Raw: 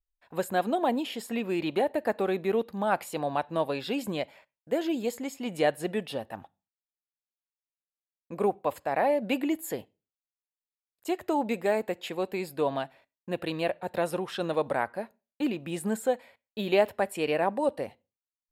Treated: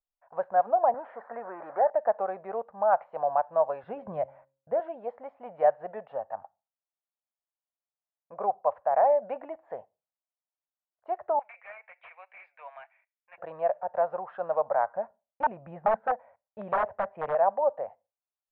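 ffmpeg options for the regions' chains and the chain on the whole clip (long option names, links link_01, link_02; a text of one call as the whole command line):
ffmpeg -i in.wav -filter_complex "[0:a]asettb=1/sr,asplit=3[link_01][link_02][link_03];[link_01]atrim=end=0.944[link_04];[link_02]atrim=start=0.94:end=1.9,asetpts=PTS-STARTPTS,afade=type=in:duration=0.004:curve=qsin,afade=type=out:start_time=0.956:duration=0.004:curve=qsin,aeval=exprs='val(0)+0.5*0.0141*sgn(val(0))':channel_layout=same,highpass=260,highshelf=frequency=2200:width_type=q:width=3:gain=-8[link_05];[link_03]atrim=start=1.896[link_06];[link_04][link_05]acrossfade=duration=0.004:curve1=hsin:curve2=qsin[link_07];[link_07][link_06]acrossfade=duration=0.004:curve1=qsin:curve2=hsin,asettb=1/sr,asplit=3[link_08][link_09][link_10];[link_08]atrim=end=3.834[link_11];[link_09]atrim=start=3.83:end=4.8,asetpts=PTS-STARTPTS,afade=type=in:duration=0.004:curve=qsin,afade=type=out:start_time=0.966:duration=0.004:curve=qsin,bass=frequency=250:gain=14,treble=frequency=4000:gain=-2,bandreject=frequency=135.6:width_type=h:width=4,bandreject=frequency=271.2:width_type=h:width=4,bandreject=frequency=406.8:width_type=h:width=4,bandreject=frequency=542.4:width_type=h:width=4[link_12];[link_10]atrim=start=4.796[link_13];[link_11][link_12]acrossfade=duration=0.004:curve1=hsin:curve2=qsin[link_14];[link_14][link_13]acrossfade=duration=0.004:curve1=qsin:curve2=hsin,asettb=1/sr,asplit=3[link_15][link_16][link_17];[link_15]atrim=end=11.394[link_18];[link_16]atrim=start=11.39:end=13.38,asetpts=PTS-STARTPTS,afade=type=in:duration=0.004:curve=qsin,afade=type=out:start_time=1.986:duration=0.004:curve=qsin,highpass=frequency=2300:width_type=q:width=12,volume=29dB,asoftclip=hard,volume=-29dB[link_19];[link_17]atrim=start=13.376[link_20];[link_18][link_19]acrossfade=duration=0.004:curve1=hsin:curve2=qsin[link_21];[link_21][link_20]acrossfade=duration=0.004:curve1=qsin:curve2=hsin,asettb=1/sr,asplit=3[link_22][link_23][link_24];[link_22]atrim=end=14.954[link_25];[link_23]atrim=start=14.95:end=17.35,asetpts=PTS-STARTPTS,afade=type=in:duration=0.004:curve=qsin,afade=type=out:start_time=2.396:duration=0.004:curve=qsin,bass=frequency=250:gain=11,treble=frequency=4000:gain=-8,aeval=exprs='(mod(7.94*val(0)+1,2)-1)/7.94':channel_layout=same[link_26];[link_24]atrim=start=17.346[link_27];[link_25][link_26]acrossfade=duration=0.004:curve1=hsin:curve2=qsin[link_28];[link_28][link_27]acrossfade=duration=0.004:curve1=qsin:curve2=hsin,lowpass=frequency=1400:width=0.5412,lowpass=frequency=1400:width=1.3066,lowshelf=frequency=450:width_type=q:width=3:gain=-12.5,volume=-1.5dB" out.wav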